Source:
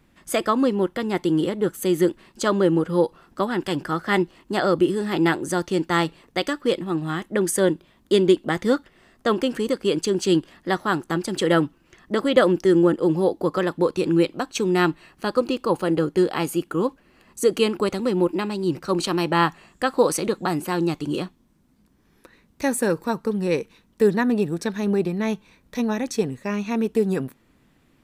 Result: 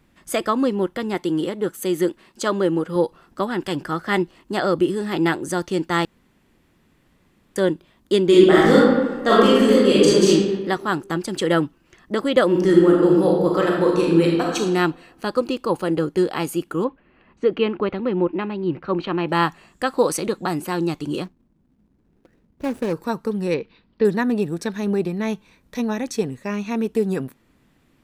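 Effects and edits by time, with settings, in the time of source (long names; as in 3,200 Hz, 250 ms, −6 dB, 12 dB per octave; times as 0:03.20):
0:01.14–0:02.96: low-shelf EQ 120 Hz −10 dB
0:06.05–0:07.56: fill with room tone
0:08.28–0:10.29: thrown reverb, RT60 1.3 s, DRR −8.5 dB
0:12.46–0:14.56: thrown reverb, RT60 1.2 s, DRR −2 dB
0:16.84–0:19.29: low-pass filter 3,000 Hz 24 dB per octave
0:21.24–0:22.93: running median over 41 samples
0:23.54–0:24.05: Chebyshev low-pass filter 4,800 Hz, order 5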